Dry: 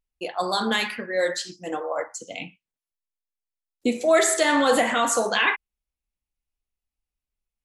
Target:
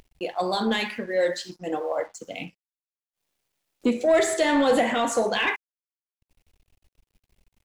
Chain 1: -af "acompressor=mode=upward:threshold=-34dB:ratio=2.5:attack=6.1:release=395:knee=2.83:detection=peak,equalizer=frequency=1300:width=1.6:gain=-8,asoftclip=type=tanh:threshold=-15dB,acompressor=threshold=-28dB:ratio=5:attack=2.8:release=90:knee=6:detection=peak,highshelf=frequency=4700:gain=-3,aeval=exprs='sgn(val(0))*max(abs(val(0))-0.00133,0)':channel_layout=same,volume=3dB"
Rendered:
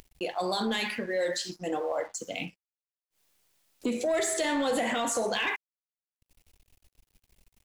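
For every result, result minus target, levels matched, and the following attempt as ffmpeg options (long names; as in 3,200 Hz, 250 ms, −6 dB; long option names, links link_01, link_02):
downward compressor: peak gain reduction +9 dB; 8,000 Hz band +6.5 dB
-af "acompressor=mode=upward:threshold=-34dB:ratio=2.5:attack=6.1:release=395:knee=2.83:detection=peak,equalizer=frequency=1300:width=1.6:gain=-8,asoftclip=type=tanh:threshold=-15dB,highshelf=frequency=4700:gain=-3,aeval=exprs='sgn(val(0))*max(abs(val(0))-0.00133,0)':channel_layout=same,volume=3dB"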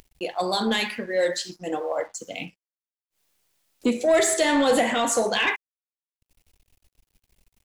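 8,000 Hz band +6.0 dB
-af "acompressor=mode=upward:threshold=-34dB:ratio=2.5:attack=6.1:release=395:knee=2.83:detection=peak,equalizer=frequency=1300:width=1.6:gain=-8,asoftclip=type=tanh:threshold=-15dB,highshelf=frequency=4700:gain=-12,aeval=exprs='sgn(val(0))*max(abs(val(0))-0.00133,0)':channel_layout=same,volume=3dB"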